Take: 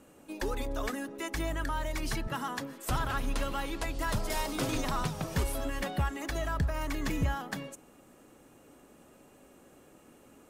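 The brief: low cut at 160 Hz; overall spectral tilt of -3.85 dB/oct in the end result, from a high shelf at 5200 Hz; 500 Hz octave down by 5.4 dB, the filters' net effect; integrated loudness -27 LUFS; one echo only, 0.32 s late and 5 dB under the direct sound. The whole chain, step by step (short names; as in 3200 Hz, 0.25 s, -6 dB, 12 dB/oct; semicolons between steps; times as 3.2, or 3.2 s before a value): HPF 160 Hz; bell 500 Hz -7 dB; high shelf 5200 Hz -3 dB; echo 0.32 s -5 dB; gain +9.5 dB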